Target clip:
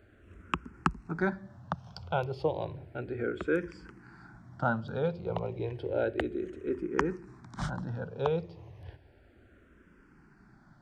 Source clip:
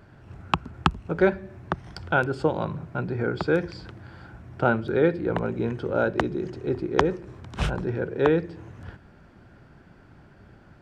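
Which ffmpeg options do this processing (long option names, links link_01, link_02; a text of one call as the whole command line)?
ffmpeg -i in.wav -filter_complex "[0:a]asplit=2[link_01][link_02];[link_02]afreqshift=-0.32[link_03];[link_01][link_03]amix=inputs=2:normalize=1,volume=-4.5dB" out.wav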